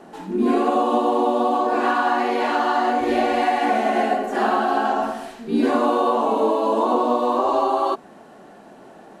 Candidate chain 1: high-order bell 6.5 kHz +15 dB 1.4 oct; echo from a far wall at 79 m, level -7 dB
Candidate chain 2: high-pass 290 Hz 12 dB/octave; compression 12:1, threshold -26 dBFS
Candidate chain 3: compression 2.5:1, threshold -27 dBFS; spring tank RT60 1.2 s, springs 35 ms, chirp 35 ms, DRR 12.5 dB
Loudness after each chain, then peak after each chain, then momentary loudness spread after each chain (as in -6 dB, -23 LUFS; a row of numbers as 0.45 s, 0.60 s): -19.5 LUFS, -30.0 LUFS, -27.0 LUFS; -6.0 dBFS, -16.0 dBFS, -13.5 dBFS; 5 LU, 11 LU, 11 LU